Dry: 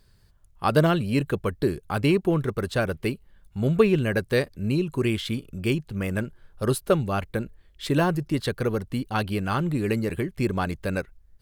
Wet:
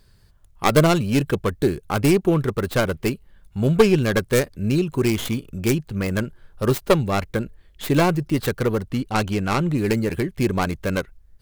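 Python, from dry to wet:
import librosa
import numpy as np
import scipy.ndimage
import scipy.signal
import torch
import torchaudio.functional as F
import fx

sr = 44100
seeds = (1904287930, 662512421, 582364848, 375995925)

y = fx.tracing_dist(x, sr, depth_ms=0.41)
y = fx.high_shelf(y, sr, hz=12000.0, db=-9.5, at=(8.89, 9.78))
y = y * librosa.db_to_amplitude(4.0)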